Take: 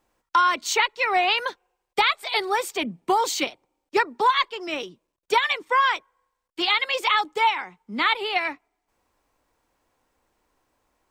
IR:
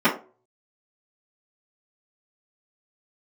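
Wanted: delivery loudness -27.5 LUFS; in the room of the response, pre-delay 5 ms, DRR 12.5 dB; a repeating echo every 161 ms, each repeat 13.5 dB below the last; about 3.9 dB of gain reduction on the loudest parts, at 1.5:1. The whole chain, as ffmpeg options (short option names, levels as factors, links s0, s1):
-filter_complex "[0:a]acompressor=threshold=0.0501:ratio=1.5,aecho=1:1:161|322:0.211|0.0444,asplit=2[s0][s1];[1:a]atrim=start_sample=2205,adelay=5[s2];[s1][s2]afir=irnorm=-1:irlink=0,volume=0.0266[s3];[s0][s3]amix=inputs=2:normalize=0,volume=0.841"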